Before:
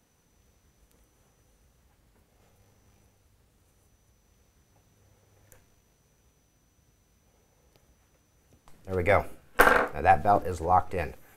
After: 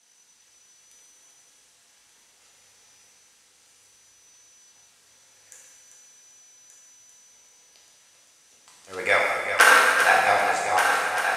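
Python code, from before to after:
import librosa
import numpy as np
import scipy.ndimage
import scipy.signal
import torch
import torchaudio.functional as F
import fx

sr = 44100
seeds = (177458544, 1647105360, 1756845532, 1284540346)

y = fx.fade_out_tail(x, sr, length_s=0.96)
y = fx.weighting(y, sr, curve='ITU-R 468')
y = fx.echo_heads(y, sr, ms=393, heads='first and third', feedback_pct=56, wet_db=-8.5)
y = fx.rev_gated(y, sr, seeds[0], gate_ms=450, shape='falling', drr_db=-3.5)
y = y * 10.0 ** (-1.0 / 20.0)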